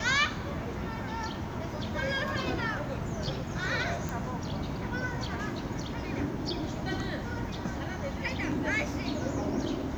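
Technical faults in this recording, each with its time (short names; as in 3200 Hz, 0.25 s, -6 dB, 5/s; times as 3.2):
4.09 pop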